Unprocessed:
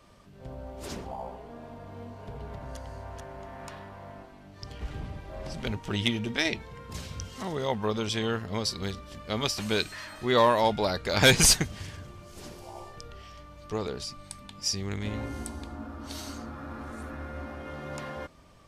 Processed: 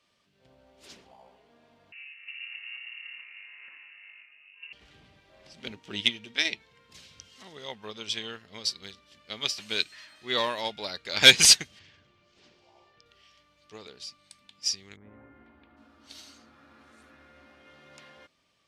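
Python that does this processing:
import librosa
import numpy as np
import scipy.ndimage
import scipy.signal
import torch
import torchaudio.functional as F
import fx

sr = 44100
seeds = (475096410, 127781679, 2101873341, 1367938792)

y = fx.freq_invert(x, sr, carrier_hz=2800, at=(1.92, 4.73))
y = fx.peak_eq(y, sr, hz=280.0, db=6.5, octaves=1.9, at=(5.57, 6.01))
y = fx.air_absorb(y, sr, metres=140.0, at=(11.79, 13.06))
y = fx.lowpass(y, sr, hz=fx.line((14.95, 1200.0), (15.76, 2900.0)), slope=24, at=(14.95, 15.76), fade=0.02)
y = fx.weighting(y, sr, curve='D')
y = fx.upward_expand(y, sr, threshold_db=-35.0, expansion=1.5)
y = y * librosa.db_to_amplitude(-2.5)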